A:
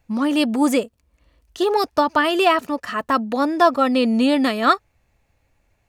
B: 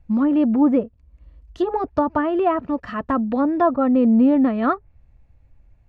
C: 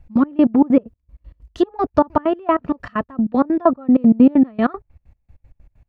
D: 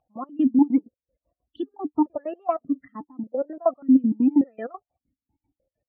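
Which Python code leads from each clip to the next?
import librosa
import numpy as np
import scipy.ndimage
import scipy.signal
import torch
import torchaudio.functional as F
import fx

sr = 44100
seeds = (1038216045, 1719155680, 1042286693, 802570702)

y1 = fx.env_lowpass_down(x, sr, base_hz=1400.0, full_db=-15.0)
y1 = fx.riaa(y1, sr, side='playback')
y1 = fx.notch(y1, sr, hz=410.0, q=12.0)
y1 = y1 * 10.0 ** (-3.5 / 20.0)
y2 = fx.step_gate(y1, sr, bpm=193, pattern='x.x..x.x.', floor_db=-24.0, edge_ms=4.5)
y2 = y2 * 10.0 ** (5.5 / 20.0)
y3 = fx.spec_topn(y2, sr, count=32)
y3 = fx.wow_flutter(y3, sr, seeds[0], rate_hz=2.1, depth_cents=67.0)
y3 = fx.vowel_held(y3, sr, hz=3.4)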